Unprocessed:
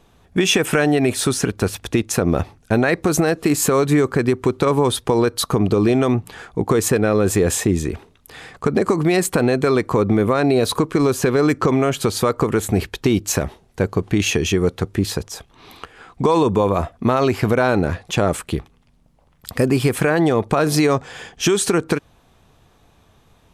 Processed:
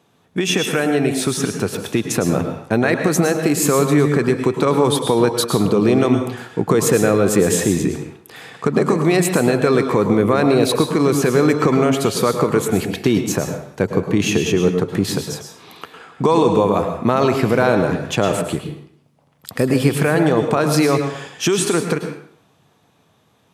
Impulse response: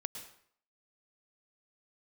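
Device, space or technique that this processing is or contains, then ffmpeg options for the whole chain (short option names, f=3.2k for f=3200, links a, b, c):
far laptop microphone: -filter_complex "[1:a]atrim=start_sample=2205[a];[0:a][a]afir=irnorm=-1:irlink=0,highpass=f=110:w=0.5412,highpass=f=110:w=1.3066,dynaudnorm=f=100:g=31:m=11.5dB,asplit=3[b][c][d];[b]afade=t=out:st=13.2:d=0.02[e];[c]adynamicequalizer=threshold=0.0178:dfrequency=1600:dqfactor=0.7:tfrequency=1600:tqfactor=0.7:attack=5:release=100:ratio=0.375:range=2.5:mode=cutabove:tftype=highshelf,afade=t=in:st=13.2:d=0.02,afade=t=out:st=14.93:d=0.02[f];[d]afade=t=in:st=14.93:d=0.02[g];[e][f][g]amix=inputs=3:normalize=0,volume=-1dB"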